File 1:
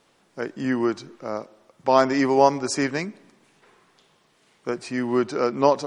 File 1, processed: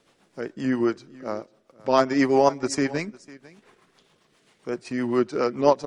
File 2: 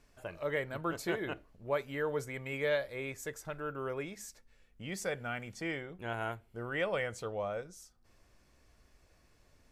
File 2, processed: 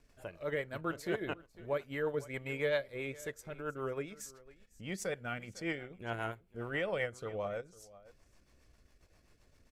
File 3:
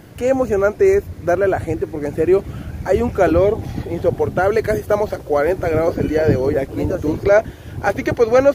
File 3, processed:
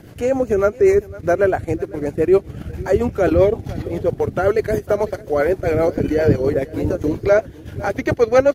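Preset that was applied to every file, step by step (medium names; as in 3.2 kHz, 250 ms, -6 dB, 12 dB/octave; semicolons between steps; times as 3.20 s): transient shaper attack -3 dB, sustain -8 dB; delay 501 ms -20.5 dB; rotary cabinet horn 7.5 Hz; trim +2.5 dB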